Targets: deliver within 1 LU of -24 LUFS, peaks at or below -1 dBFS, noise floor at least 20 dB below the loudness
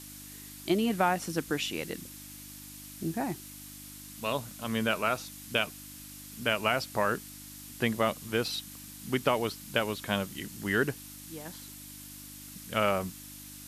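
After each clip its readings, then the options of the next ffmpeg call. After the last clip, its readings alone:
hum 50 Hz; highest harmonic 300 Hz; hum level -50 dBFS; noise floor -47 dBFS; noise floor target -52 dBFS; loudness -31.5 LUFS; peak level -12.5 dBFS; loudness target -24.0 LUFS
-> -af "bandreject=f=50:t=h:w=4,bandreject=f=100:t=h:w=4,bandreject=f=150:t=h:w=4,bandreject=f=200:t=h:w=4,bandreject=f=250:t=h:w=4,bandreject=f=300:t=h:w=4"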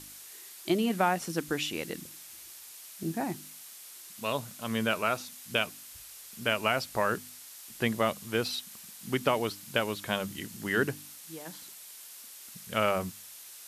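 hum not found; noise floor -48 dBFS; noise floor target -52 dBFS
-> -af "afftdn=nr=6:nf=-48"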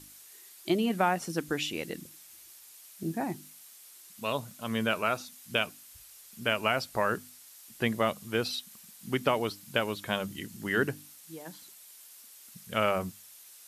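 noise floor -53 dBFS; loudness -31.5 LUFS; peak level -12.0 dBFS; loudness target -24.0 LUFS
-> -af "volume=2.37"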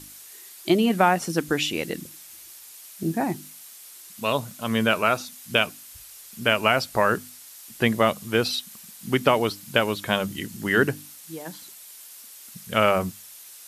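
loudness -24.0 LUFS; peak level -4.5 dBFS; noise floor -45 dBFS

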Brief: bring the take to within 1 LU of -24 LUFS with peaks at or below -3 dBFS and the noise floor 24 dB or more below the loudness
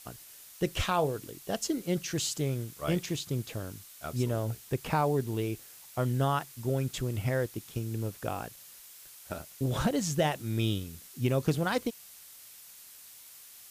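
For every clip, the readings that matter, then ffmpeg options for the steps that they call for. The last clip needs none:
noise floor -52 dBFS; noise floor target -56 dBFS; loudness -32.0 LUFS; peak level -13.0 dBFS; loudness target -24.0 LUFS
-> -af "afftdn=nr=6:nf=-52"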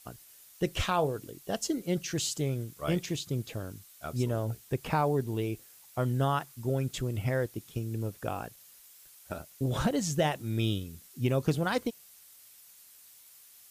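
noise floor -56 dBFS; loudness -32.0 LUFS; peak level -13.0 dBFS; loudness target -24.0 LUFS
-> -af "volume=2.51"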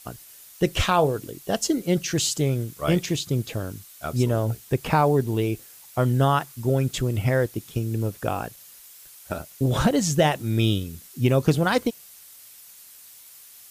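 loudness -24.0 LUFS; peak level -5.0 dBFS; noise floor -48 dBFS

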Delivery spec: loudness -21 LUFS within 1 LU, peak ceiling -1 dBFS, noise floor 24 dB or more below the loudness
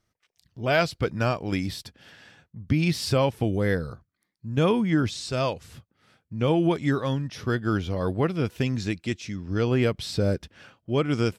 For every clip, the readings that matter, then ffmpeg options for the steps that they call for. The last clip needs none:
loudness -26.0 LUFS; peak level -8.5 dBFS; loudness target -21.0 LUFS
-> -af "volume=1.78"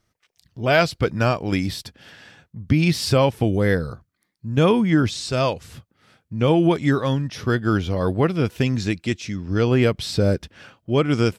loudness -21.0 LUFS; peak level -3.5 dBFS; noise floor -75 dBFS

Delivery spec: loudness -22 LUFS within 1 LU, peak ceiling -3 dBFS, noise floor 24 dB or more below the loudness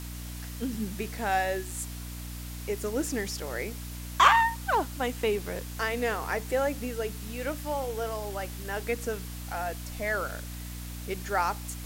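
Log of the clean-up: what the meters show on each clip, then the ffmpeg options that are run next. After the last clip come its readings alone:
hum 60 Hz; highest harmonic 300 Hz; hum level -37 dBFS; noise floor -39 dBFS; noise floor target -55 dBFS; loudness -30.5 LUFS; peak level -7.0 dBFS; loudness target -22.0 LUFS
-> -af "bandreject=f=60:t=h:w=4,bandreject=f=120:t=h:w=4,bandreject=f=180:t=h:w=4,bandreject=f=240:t=h:w=4,bandreject=f=300:t=h:w=4"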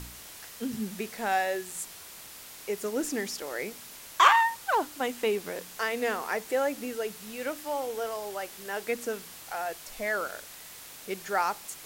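hum not found; noise floor -47 dBFS; noise floor target -54 dBFS
-> -af "afftdn=nr=7:nf=-47"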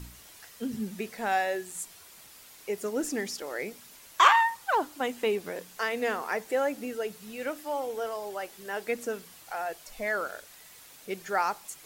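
noise floor -52 dBFS; noise floor target -55 dBFS
-> -af "afftdn=nr=6:nf=-52"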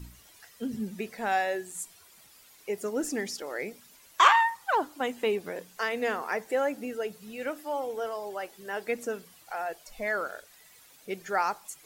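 noise floor -56 dBFS; loudness -30.5 LUFS; peak level -7.0 dBFS; loudness target -22.0 LUFS
-> -af "volume=2.66,alimiter=limit=0.708:level=0:latency=1"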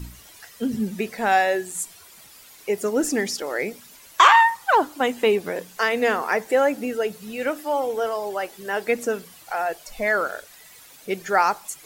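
loudness -22.5 LUFS; peak level -3.0 dBFS; noise floor -48 dBFS

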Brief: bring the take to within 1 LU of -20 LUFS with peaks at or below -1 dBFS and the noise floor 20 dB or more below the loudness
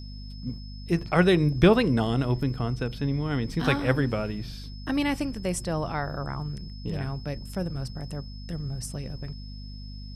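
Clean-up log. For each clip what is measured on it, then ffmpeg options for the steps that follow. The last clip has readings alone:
hum 50 Hz; highest harmonic 250 Hz; hum level -37 dBFS; steady tone 5.2 kHz; tone level -48 dBFS; loudness -27.5 LUFS; peak level -6.0 dBFS; loudness target -20.0 LUFS
-> -af "bandreject=f=50:t=h:w=6,bandreject=f=100:t=h:w=6,bandreject=f=150:t=h:w=6,bandreject=f=200:t=h:w=6,bandreject=f=250:t=h:w=6"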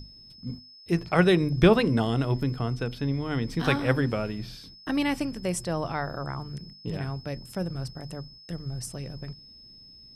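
hum not found; steady tone 5.2 kHz; tone level -48 dBFS
-> -af "bandreject=f=5200:w=30"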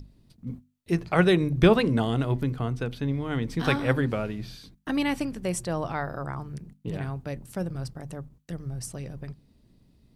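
steady tone not found; loudness -27.5 LUFS; peak level -6.5 dBFS; loudness target -20.0 LUFS
-> -af "volume=2.37,alimiter=limit=0.891:level=0:latency=1"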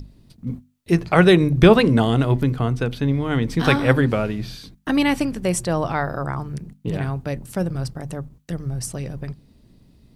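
loudness -20.0 LUFS; peak level -1.0 dBFS; noise floor -55 dBFS

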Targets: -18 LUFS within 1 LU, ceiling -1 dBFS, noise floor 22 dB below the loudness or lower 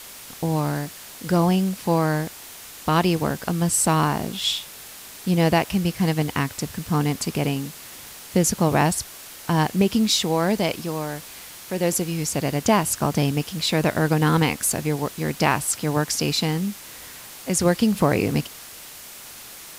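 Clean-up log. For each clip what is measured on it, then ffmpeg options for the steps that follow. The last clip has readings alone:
noise floor -41 dBFS; noise floor target -45 dBFS; loudness -22.5 LUFS; peak level -4.5 dBFS; loudness target -18.0 LUFS
-> -af "afftdn=nr=6:nf=-41"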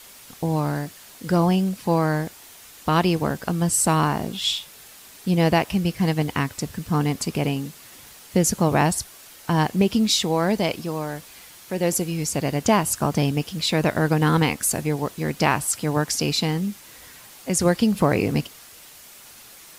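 noise floor -46 dBFS; loudness -22.5 LUFS; peak level -4.5 dBFS; loudness target -18.0 LUFS
-> -af "volume=1.68,alimiter=limit=0.891:level=0:latency=1"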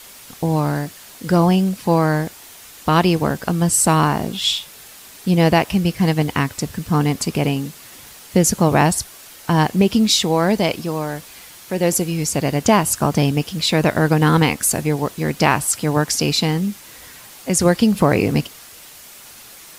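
loudness -18.0 LUFS; peak level -1.0 dBFS; noise floor -41 dBFS

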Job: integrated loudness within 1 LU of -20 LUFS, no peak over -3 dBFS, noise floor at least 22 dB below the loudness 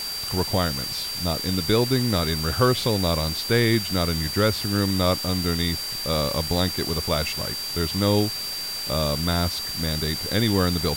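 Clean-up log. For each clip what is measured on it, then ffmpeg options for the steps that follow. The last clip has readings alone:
steady tone 4.7 kHz; tone level -29 dBFS; noise floor -31 dBFS; noise floor target -45 dBFS; loudness -23.0 LUFS; peak level -6.0 dBFS; loudness target -20.0 LUFS
-> -af "bandreject=f=4700:w=30"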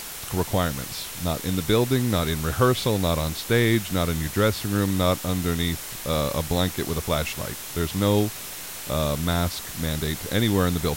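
steady tone not found; noise floor -36 dBFS; noise floor target -47 dBFS
-> -af "afftdn=nr=11:nf=-36"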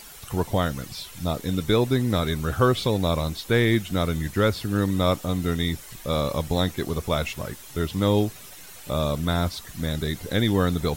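noise floor -44 dBFS; noise floor target -47 dBFS
-> -af "afftdn=nr=6:nf=-44"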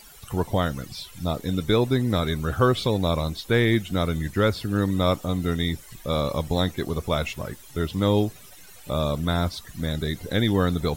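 noise floor -47 dBFS; loudness -25.0 LUFS; peak level -6.5 dBFS; loudness target -20.0 LUFS
-> -af "volume=1.78,alimiter=limit=0.708:level=0:latency=1"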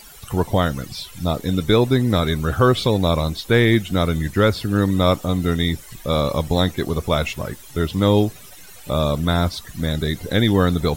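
loudness -20.0 LUFS; peak level -3.0 dBFS; noise floor -42 dBFS

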